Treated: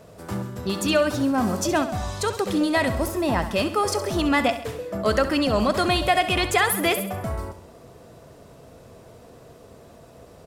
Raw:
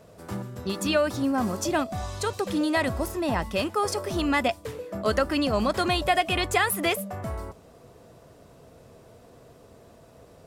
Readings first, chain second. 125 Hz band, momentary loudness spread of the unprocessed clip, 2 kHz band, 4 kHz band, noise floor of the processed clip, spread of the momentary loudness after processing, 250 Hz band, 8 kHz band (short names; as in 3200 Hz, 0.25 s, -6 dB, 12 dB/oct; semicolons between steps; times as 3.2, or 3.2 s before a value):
+4.0 dB, 12 LU, +3.0 dB, +3.5 dB, -48 dBFS, 10 LU, +3.5 dB, +4.0 dB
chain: in parallel at -9 dB: soft clip -25.5 dBFS, distortion -9 dB; on the sum: feedback echo 67 ms, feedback 52%, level -12 dB; gain +1.5 dB